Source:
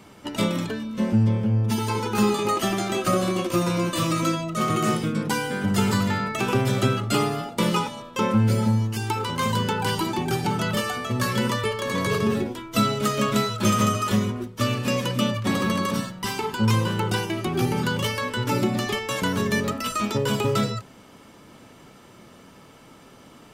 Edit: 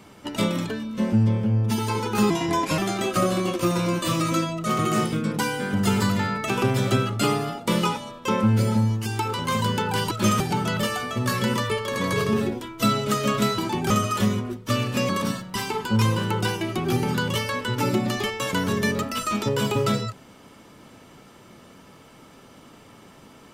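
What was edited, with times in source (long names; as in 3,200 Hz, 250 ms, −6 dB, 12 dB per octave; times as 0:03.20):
0:02.30–0:02.69: play speed 81%
0:10.02–0:10.34: swap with 0:13.52–0:13.81
0:15.00–0:15.78: remove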